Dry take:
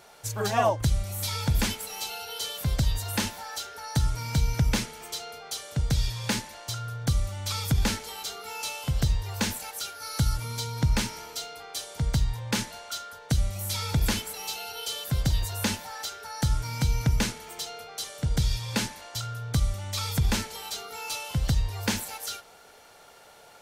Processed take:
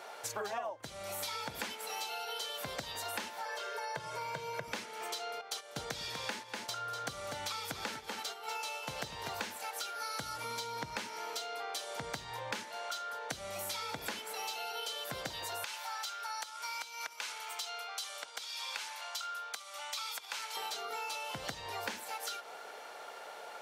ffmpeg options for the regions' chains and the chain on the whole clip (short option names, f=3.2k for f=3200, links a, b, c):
-filter_complex "[0:a]asettb=1/sr,asplit=3[a][b][c];[a]atrim=end=3.454[d];[b]atrim=start=3.45:end=4.68,asetpts=PTS-STARTPTS,afade=t=in:d=0.004:c=qsin,afade=t=out:st=1.226:d=0.004:c=qsin,highpass=f=120:w=0.5412,highpass=f=120:w=1.3066,acrossover=split=2900[e][f];[f]acompressor=threshold=-46dB:ratio=4:attack=1:release=60[g];[e][g]amix=inputs=2:normalize=0,aecho=1:1:1.9:0.84,atrim=end_sample=54243[h];[c]atrim=start=4.676[i];[d][h]acrossfade=d=0.004:c1=hsin:c2=qsin[j];[j][i]acrossfade=d=0.004:c1=qsin:c2=hsin,asettb=1/sr,asplit=3[k][l][m];[k]atrim=end=5.414[n];[l]atrim=start=5.41:end=9.56,asetpts=PTS-STARTPTS,afade=t=in:d=0.004:c=qsin,afade=t=out:st=4.146:d=0.004:c=qsin,agate=range=-11dB:threshold=-39dB:ratio=16:release=100:detection=peak,aecho=1:1:244:0.335,atrim=end_sample=183015[o];[m]atrim=start=9.556[p];[n][o]acrossfade=d=0.004:c1=hsin:c2=qsin[q];[q][p]acrossfade=d=0.004:c1=qsin:c2=hsin,asettb=1/sr,asplit=3[r][s][t];[r]atrim=end=15.644[u];[s]atrim=start=15.64:end=20.57,asetpts=PTS-STARTPTS,afade=t=in:d=0.004:c=qsin,afade=t=out:st=4.926:d=0.004:c=qsin,equalizer=f=1.8k:w=4.9:g=-6.5,acompressor=threshold=-29dB:ratio=4:attack=3.2:release=140:knee=1:detection=peak,highpass=1.1k[v];[t]atrim=start=20.566[w];[u][v]acrossfade=d=0.004:c1=hsin:c2=qsin[x];[x][w]acrossfade=d=0.004:c1=qsin:c2=hsin,highpass=460,highshelf=f=3.9k:g=-11.5,acompressor=threshold=-44dB:ratio=10,volume=7.5dB"